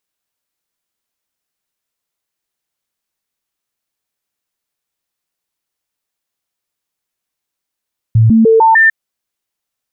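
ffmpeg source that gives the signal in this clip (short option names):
-f lavfi -i "aevalsrc='0.596*clip(min(mod(t,0.15),0.15-mod(t,0.15))/0.005,0,1)*sin(2*PI*112*pow(2,floor(t/0.15)/1)*mod(t,0.15))':d=0.75:s=44100"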